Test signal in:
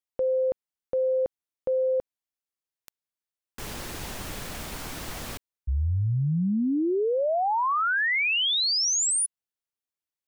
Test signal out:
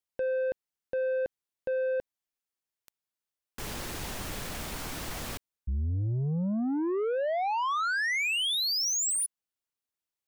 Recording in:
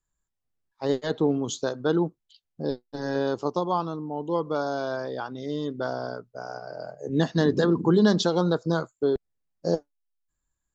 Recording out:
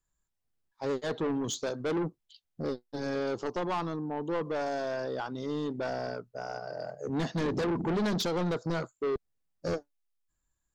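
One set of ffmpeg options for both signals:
ffmpeg -i in.wav -af "asoftclip=type=tanh:threshold=-26.5dB" out.wav

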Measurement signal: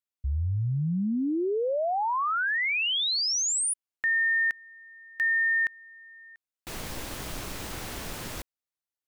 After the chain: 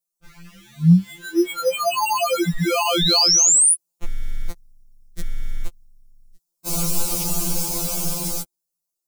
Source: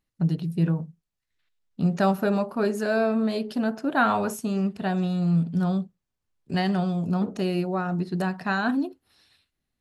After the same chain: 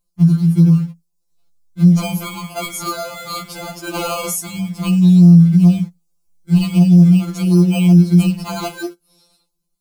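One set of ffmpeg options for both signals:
ffmpeg -i in.wav -filter_complex "[0:a]bass=frequency=250:gain=8,treble=frequency=4000:gain=12,acrossover=split=290|3600[link_01][link_02][link_03];[link_02]acrusher=samples=24:mix=1:aa=0.000001[link_04];[link_01][link_04][link_03]amix=inputs=3:normalize=0,dynaudnorm=framelen=500:gausssize=7:maxgain=4.5dB,asplit=2[link_05][link_06];[link_06]acrusher=bits=5:mix=0:aa=0.000001,volume=-10.5dB[link_07];[link_05][link_07]amix=inputs=2:normalize=0,alimiter=level_in=10dB:limit=-1dB:release=50:level=0:latency=1,afftfilt=real='re*2.83*eq(mod(b,8),0)':imag='im*2.83*eq(mod(b,8),0)':win_size=2048:overlap=0.75,volume=-7.5dB" out.wav

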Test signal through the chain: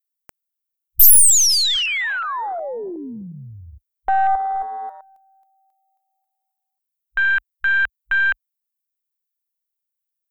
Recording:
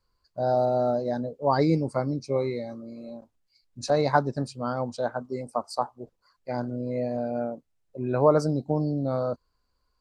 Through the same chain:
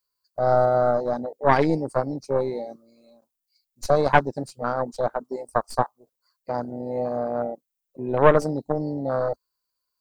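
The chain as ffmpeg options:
ffmpeg -i in.wav -af "aemphasis=mode=production:type=riaa,aeval=exprs='0.841*(cos(1*acos(clip(val(0)/0.841,-1,1)))-cos(1*PI/2))+0.299*(cos(5*acos(clip(val(0)/0.841,-1,1)))-cos(5*PI/2))+0.266*(cos(8*acos(clip(val(0)/0.841,-1,1)))-cos(8*PI/2))':channel_layout=same,afwtdn=0.0891,volume=-3dB" out.wav

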